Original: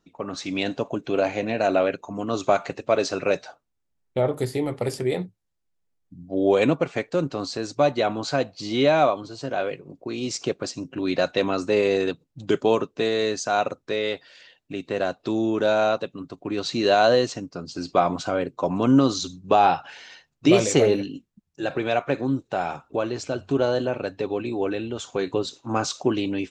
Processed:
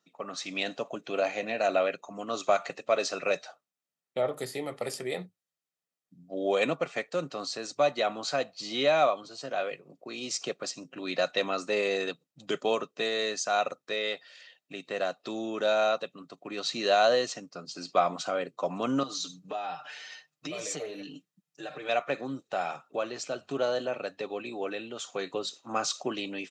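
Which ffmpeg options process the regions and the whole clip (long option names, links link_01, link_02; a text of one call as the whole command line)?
ffmpeg -i in.wav -filter_complex "[0:a]asettb=1/sr,asplit=3[link_01][link_02][link_03];[link_01]atrim=end=19.034[link_04];[link_02]atrim=start=19.03:end=21.89,asetpts=PTS-STARTPTS,afade=type=in:duration=0.004:curve=qsin,afade=type=out:start_time=2.856:duration=0.004:curve=qsin,highpass=57,acompressor=threshold=-30dB:ratio=4:attack=3.2:release=140:knee=1:detection=peak,aecho=1:1:6.6:0.77,atrim=end_sample=126126[link_05];[link_03]atrim=start=21.886[link_06];[link_04][link_05]acrossfade=duration=0.004:curve1=hsin:curve2=qsin[link_07];[link_07][link_06]acrossfade=duration=0.004:curve1=qsin:curve2=hsin,highpass=frequency=160:width=0.5412,highpass=frequency=160:width=1.3066,tiltshelf=frequency=790:gain=-4,aecho=1:1:1.6:0.33,volume=-6dB" out.wav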